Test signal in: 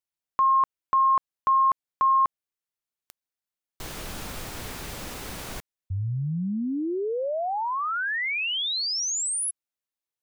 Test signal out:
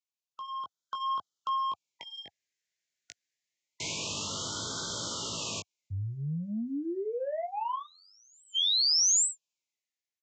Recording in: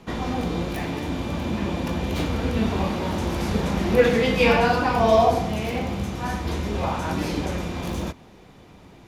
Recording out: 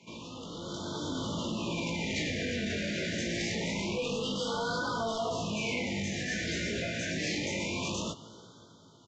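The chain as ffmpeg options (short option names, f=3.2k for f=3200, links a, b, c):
-filter_complex "[0:a]asuperstop=centerf=760:order=4:qfactor=7.2,acrossover=split=470[a][b];[b]crystalizer=i=0.5:c=0[c];[a][c]amix=inputs=2:normalize=0,highpass=f=91:w=0.5412,highpass=f=91:w=1.3066,aresample=16000,asoftclip=type=tanh:threshold=-19dB,aresample=44100,alimiter=limit=-23.5dB:level=0:latency=1,flanger=delay=17.5:depth=2.8:speed=0.59,equalizer=f=2k:t=o:w=0.73:g=8.5,acompressor=threshold=-40dB:ratio=2:attack=23:release=31:knee=6:detection=rms,highshelf=f=3.3k:g=11,dynaudnorm=f=140:g=11:m=10dB,afftfilt=real='re*(1-between(b*sr/1024,990*pow(2200/990,0.5+0.5*sin(2*PI*0.26*pts/sr))/1.41,990*pow(2200/990,0.5+0.5*sin(2*PI*0.26*pts/sr))*1.41))':imag='im*(1-between(b*sr/1024,990*pow(2200/990,0.5+0.5*sin(2*PI*0.26*pts/sr))/1.41,990*pow(2200/990,0.5+0.5*sin(2*PI*0.26*pts/sr))*1.41))':win_size=1024:overlap=0.75,volume=-7.5dB"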